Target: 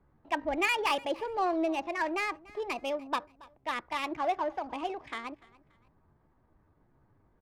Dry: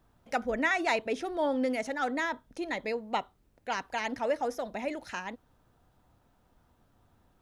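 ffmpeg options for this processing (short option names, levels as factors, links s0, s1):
-filter_complex "[0:a]acrossover=split=460|4000[s0][s1][s2];[s2]alimiter=level_in=5.96:limit=0.0631:level=0:latency=1:release=159,volume=0.168[s3];[s0][s1][s3]amix=inputs=3:normalize=0,aresample=11025,aresample=44100,adynamicsmooth=sensitivity=5:basefreq=1300,aecho=1:1:291|582:0.0794|0.0254,asetrate=55563,aresample=44100,atempo=0.793701"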